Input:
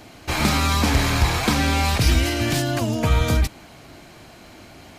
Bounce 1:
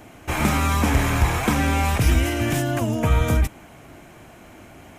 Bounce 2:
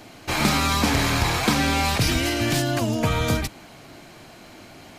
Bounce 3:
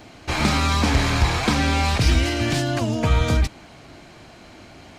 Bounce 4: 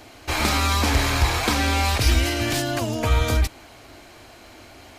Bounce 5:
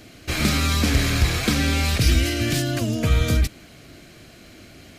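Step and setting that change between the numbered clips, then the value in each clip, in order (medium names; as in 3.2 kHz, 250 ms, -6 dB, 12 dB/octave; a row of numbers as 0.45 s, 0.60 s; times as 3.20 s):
peaking EQ, frequency: 4.4 kHz, 60 Hz, 13 kHz, 170 Hz, 900 Hz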